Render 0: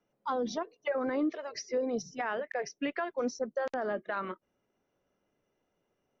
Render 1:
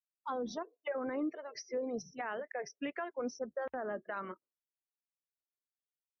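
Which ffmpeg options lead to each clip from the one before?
-af "equalizer=f=67:t=o:w=0.41:g=10,afftdn=nr=35:nf=-50,volume=0.531"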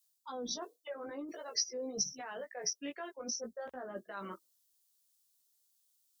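-af "areverse,acompressor=threshold=0.00562:ratio=6,areverse,flanger=delay=15:depth=2.9:speed=0.48,aexciter=amount=5.8:drive=5:freq=3300,volume=2.37"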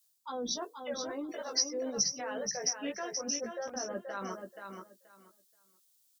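-af "aecho=1:1:479|958|1437:0.501|0.0952|0.0181,volume=1.58"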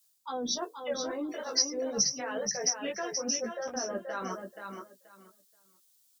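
-af "flanger=delay=3.9:depth=9.8:regen=-36:speed=0.37:shape=triangular,volume=2.24"

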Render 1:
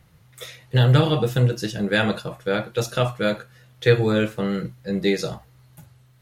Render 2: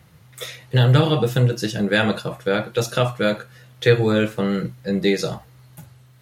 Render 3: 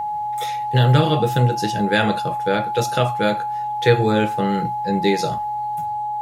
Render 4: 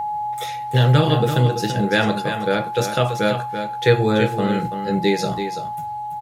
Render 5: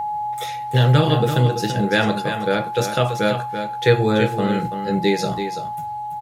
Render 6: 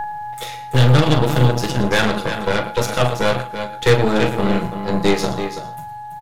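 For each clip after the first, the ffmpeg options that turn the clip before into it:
-filter_complex "[0:a]highpass=75,asplit=2[s0][s1];[s1]acompressor=threshold=0.0447:ratio=6,volume=0.794[s2];[s0][s2]amix=inputs=2:normalize=0"
-af "aeval=exprs='val(0)+0.0794*sin(2*PI*840*n/s)':c=same"
-af "aecho=1:1:334:0.376"
-af anull
-filter_complex "[0:a]asplit=2[s0][s1];[s1]adelay=40,volume=0.355[s2];[s0][s2]amix=inputs=2:normalize=0,aecho=1:1:115:0.2,aeval=exprs='0.75*(cos(1*acos(clip(val(0)/0.75,-1,1)))-cos(1*PI/2))+0.106*(cos(8*acos(clip(val(0)/0.75,-1,1)))-cos(8*PI/2))':c=same"

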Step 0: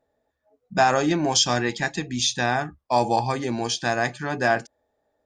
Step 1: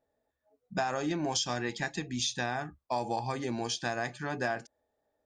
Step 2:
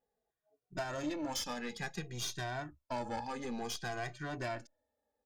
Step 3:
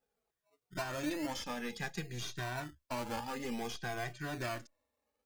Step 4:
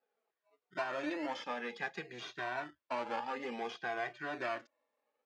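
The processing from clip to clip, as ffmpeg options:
-af "acompressor=threshold=0.0891:ratio=6,volume=0.473"
-filter_complex "[0:a]aeval=exprs='(tanh(31.6*val(0)+0.7)-tanh(0.7))/31.6':c=same,asplit=2[s0][s1];[s1]adelay=2,afreqshift=-0.56[s2];[s0][s2]amix=inputs=2:normalize=1,volume=1.12"
-filter_complex "[0:a]acrossover=split=770|3200[s0][s1][s2];[s0]acrusher=samples=21:mix=1:aa=0.000001:lfo=1:lforange=12.6:lforate=0.46[s3];[s2]alimiter=level_in=5.31:limit=0.0631:level=0:latency=1:release=483,volume=0.188[s4];[s3][s1][s4]amix=inputs=3:normalize=0,volume=1.12"
-af "highpass=380,lowpass=2700,volume=1.41"

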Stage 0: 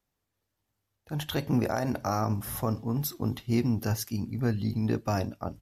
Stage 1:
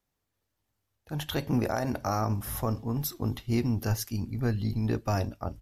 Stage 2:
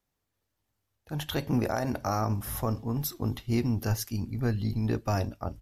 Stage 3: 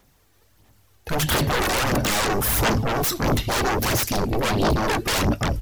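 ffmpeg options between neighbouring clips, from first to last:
-af "asubboost=boost=3.5:cutoff=79"
-af anull
-af "aeval=exprs='0.158*sin(PI/2*10*val(0)/0.158)':c=same,aphaser=in_gain=1:out_gain=1:delay=2.7:decay=0.4:speed=1.5:type=sinusoidal,volume=0.668"

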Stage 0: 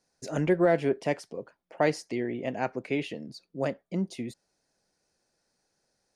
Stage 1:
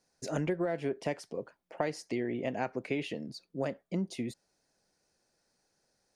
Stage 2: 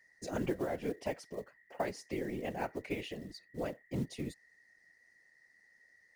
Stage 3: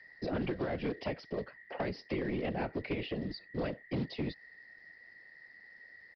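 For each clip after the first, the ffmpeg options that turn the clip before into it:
-af "acompressor=threshold=0.0398:ratio=10"
-af "acrusher=bits=6:mode=log:mix=0:aa=0.000001,aeval=exprs='val(0)+0.00112*sin(2*PI*1900*n/s)':c=same,afftfilt=real='hypot(re,im)*cos(2*PI*random(0))':imag='hypot(re,im)*sin(2*PI*random(1))':win_size=512:overlap=0.75,volume=1.26"
-filter_complex "[0:a]acrossover=split=210|640|1400[s0][s1][s2][s3];[s0]acompressor=threshold=0.00447:ratio=4[s4];[s1]acompressor=threshold=0.00501:ratio=4[s5];[s2]acompressor=threshold=0.00141:ratio=4[s6];[s3]acompressor=threshold=0.002:ratio=4[s7];[s4][s5][s6][s7]amix=inputs=4:normalize=0,aresample=11025,aeval=exprs='0.0355*sin(PI/2*1.78*val(0)/0.0355)':c=same,aresample=44100,volume=1.19"

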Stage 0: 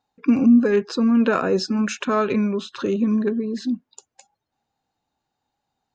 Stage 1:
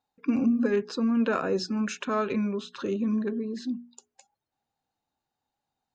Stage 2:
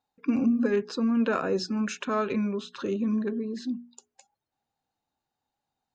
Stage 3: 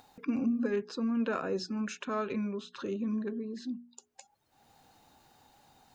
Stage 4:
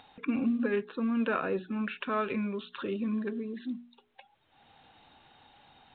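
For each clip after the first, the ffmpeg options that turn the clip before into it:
-af "bandreject=f=60:t=h:w=6,bandreject=f=120:t=h:w=6,bandreject=f=180:t=h:w=6,bandreject=f=240:t=h:w=6,bandreject=f=300:t=h:w=6,bandreject=f=360:t=h:w=6,bandreject=f=420:t=h:w=6,volume=0.473"
-af anull
-af "acompressor=mode=upward:threshold=0.0224:ratio=2.5,volume=0.501"
-filter_complex "[0:a]acrossover=split=2800[s0][s1];[s1]acompressor=threshold=0.00178:ratio=4:attack=1:release=60[s2];[s0][s2]amix=inputs=2:normalize=0,highshelf=f=2100:g=12,volume=1.12" -ar 8000 -c:a pcm_mulaw

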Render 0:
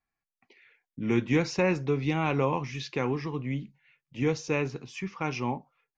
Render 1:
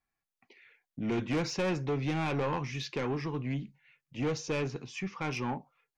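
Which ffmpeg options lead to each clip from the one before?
-af "asoftclip=type=tanh:threshold=0.0501"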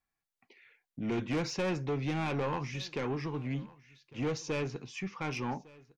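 -af "aecho=1:1:1154:0.075,volume=0.841"

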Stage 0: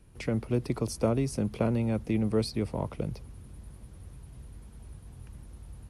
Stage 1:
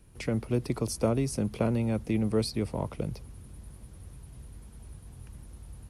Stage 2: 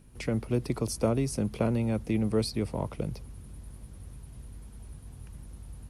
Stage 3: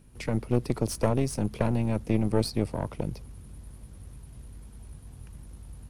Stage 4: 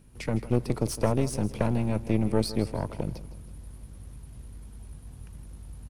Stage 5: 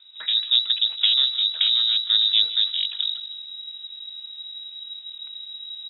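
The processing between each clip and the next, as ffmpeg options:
-af "highshelf=f=5700:g=5"
-af "aeval=exprs='val(0)+0.00224*(sin(2*PI*50*n/s)+sin(2*PI*2*50*n/s)/2+sin(2*PI*3*50*n/s)/3+sin(2*PI*4*50*n/s)/4+sin(2*PI*5*50*n/s)/5)':c=same"
-af "aeval=exprs='0.224*(cos(1*acos(clip(val(0)/0.224,-1,1)))-cos(1*PI/2))+0.0562*(cos(4*acos(clip(val(0)/0.224,-1,1)))-cos(4*PI/2))':c=same"
-af "aecho=1:1:160|320|480|640:0.178|0.0729|0.0299|0.0123"
-af "lowpass=f=3300:t=q:w=0.5098,lowpass=f=3300:t=q:w=0.6013,lowpass=f=3300:t=q:w=0.9,lowpass=f=3300:t=q:w=2.563,afreqshift=-3900,crystalizer=i=2.5:c=0"

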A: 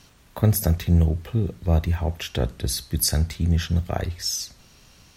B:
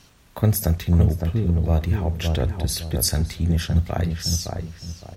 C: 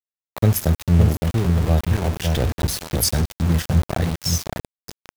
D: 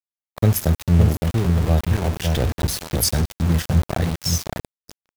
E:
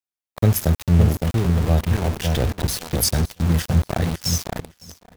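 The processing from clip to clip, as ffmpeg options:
-filter_complex "[0:a]asplit=2[s0][s1];[s1]adelay=563,lowpass=f=1200:p=1,volume=0.668,asplit=2[s2][s3];[s3]adelay=563,lowpass=f=1200:p=1,volume=0.33,asplit=2[s4][s5];[s5]adelay=563,lowpass=f=1200:p=1,volume=0.33,asplit=2[s6][s7];[s7]adelay=563,lowpass=f=1200:p=1,volume=0.33[s8];[s0][s2][s4][s6][s8]amix=inputs=5:normalize=0"
-af "aeval=exprs='val(0)*gte(abs(val(0)),0.0596)':c=same,volume=1.26"
-af "agate=range=0.0501:threshold=0.0141:ratio=16:detection=peak"
-af "aecho=1:1:559|1118:0.0891|0.0276"

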